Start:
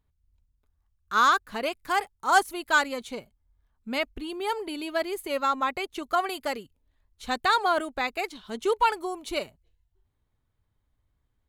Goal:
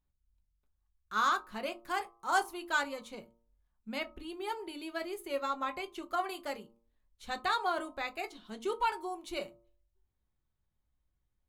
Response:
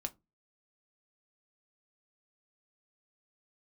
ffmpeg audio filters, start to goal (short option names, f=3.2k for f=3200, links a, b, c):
-filter_complex "[0:a]bandreject=f=115.6:t=h:w=4,bandreject=f=231.2:t=h:w=4,bandreject=f=346.8:t=h:w=4,bandreject=f=462.4:t=h:w=4,bandreject=f=578:t=h:w=4,bandreject=f=693.6:t=h:w=4,bandreject=f=809.2:t=h:w=4,bandreject=f=924.8:t=h:w=4,bandreject=f=1.0404k:t=h:w=4,bandreject=f=1.156k:t=h:w=4,bandreject=f=1.2716k:t=h:w=4[a];[1:a]atrim=start_sample=2205,afade=t=out:st=0.27:d=0.01,atrim=end_sample=12348[b];[a][b]afir=irnorm=-1:irlink=0,volume=-7.5dB"